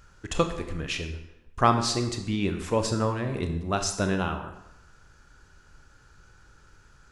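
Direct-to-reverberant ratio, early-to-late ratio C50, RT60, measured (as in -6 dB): 6.0 dB, 8.5 dB, 0.90 s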